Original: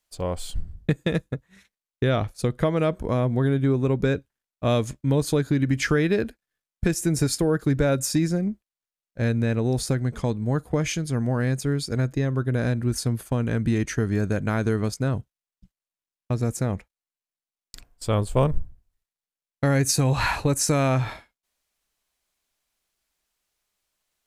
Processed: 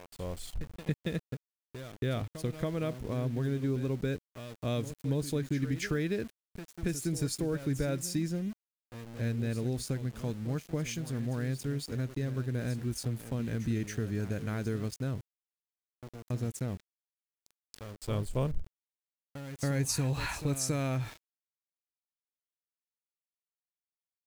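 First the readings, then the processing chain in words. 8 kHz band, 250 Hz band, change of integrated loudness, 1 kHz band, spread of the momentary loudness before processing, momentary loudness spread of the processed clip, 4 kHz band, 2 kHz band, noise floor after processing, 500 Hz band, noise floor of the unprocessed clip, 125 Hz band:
−9.0 dB, −9.5 dB, −10.0 dB, −14.0 dB, 9 LU, 14 LU, −9.0 dB, −11.0 dB, below −85 dBFS, −11.5 dB, below −85 dBFS, −9.0 dB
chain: echo ahead of the sound 278 ms −12.5 dB
centre clipping without the shift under −35.5 dBFS
dynamic equaliser 920 Hz, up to −6 dB, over −39 dBFS, Q 0.83
level −9 dB

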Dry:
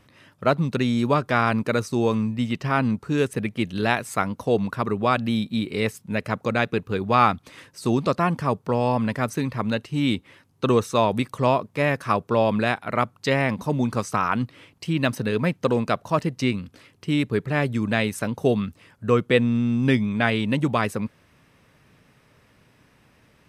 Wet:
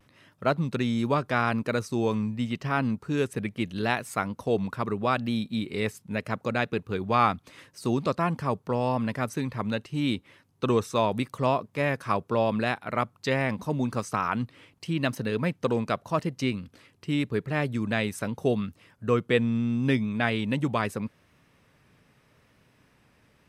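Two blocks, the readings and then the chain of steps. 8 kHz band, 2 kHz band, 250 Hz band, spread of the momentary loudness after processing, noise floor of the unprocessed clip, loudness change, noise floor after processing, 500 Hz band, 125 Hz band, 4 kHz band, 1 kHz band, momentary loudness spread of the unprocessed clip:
−4.5 dB, −4.5 dB, −4.5 dB, 6 LU, −60 dBFS, −4.5 dB, −64 dBFS, −4.5 dB, −4.5 dB, −4.5 dB, −4.5 dB, 6 LU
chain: pitch vibrato 0.81 Hz 37 cents
level −4.5 dB

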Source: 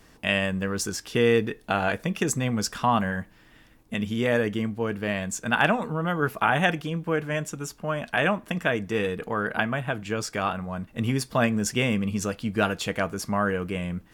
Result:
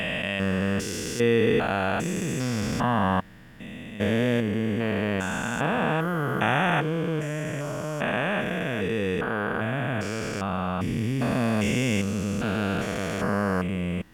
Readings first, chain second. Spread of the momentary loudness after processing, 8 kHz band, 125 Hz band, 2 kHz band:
6 LU, −4.0 dB, +2.0 dB, −1.0 dB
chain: spectrum averaged block by block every 400 ms
level +4 dB

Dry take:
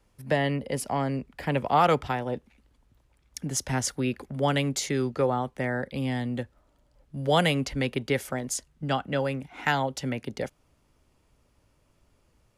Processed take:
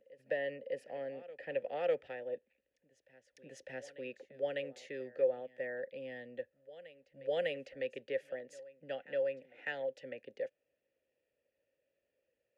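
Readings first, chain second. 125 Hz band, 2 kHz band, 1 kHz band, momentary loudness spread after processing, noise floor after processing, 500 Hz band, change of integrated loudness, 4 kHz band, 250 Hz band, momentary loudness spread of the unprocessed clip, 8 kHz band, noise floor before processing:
−30.0 dB, −12.0 dB, −22.0 dB, 14 LU, below −85 dBFS, −7.0 dB, −11.5 dB, −18.5 dB, −22.5 dB, 11 LU, below −25 dB, −67 dBFS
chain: formant filter e
on a send: backwards echo 602 ms −18.5 dB
on the sum: level −2.5 dB

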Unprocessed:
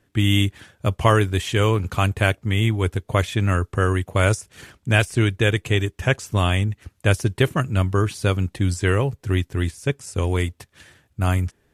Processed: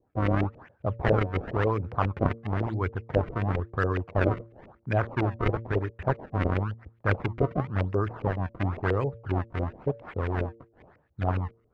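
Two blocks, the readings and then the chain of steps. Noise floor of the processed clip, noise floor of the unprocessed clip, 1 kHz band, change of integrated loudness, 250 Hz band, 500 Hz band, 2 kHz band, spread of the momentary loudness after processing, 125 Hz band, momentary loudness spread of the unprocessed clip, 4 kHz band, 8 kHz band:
−66 dBFS, −66 dBFS, −4.5 dB, −7.5 dB, −6.5 dB, −5.0 dB, −10.0 dB, 6 LU, −8.0 dB, 6 LU, −20.5 dB, below −30 dB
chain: sample-and-hold swept by an LFO 30×, swing 160% 0.97 Hz
auto-filter low-pass saw up 7.3 Hz 450–2,500 Hz
hum removal 114.4 Hz, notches 5
level −8 dB

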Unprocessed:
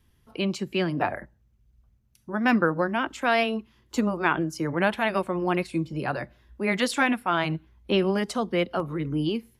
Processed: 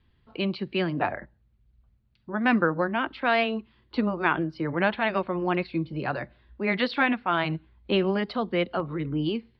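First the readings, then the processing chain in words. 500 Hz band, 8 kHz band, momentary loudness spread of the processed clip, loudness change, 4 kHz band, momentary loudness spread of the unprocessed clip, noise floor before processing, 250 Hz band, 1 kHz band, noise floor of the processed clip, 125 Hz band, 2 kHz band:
−1.0 dB, below −30 dB, 8 LU, −0.5 dB, −1.0 dB, 8 LU, −65 dBFS, −1.0 dB, −0.5 dB, −66 dBFS, −1.0 dB, 0.0 dB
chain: elliptic low-pass filter 4,400 Hz, stop band 40 dB

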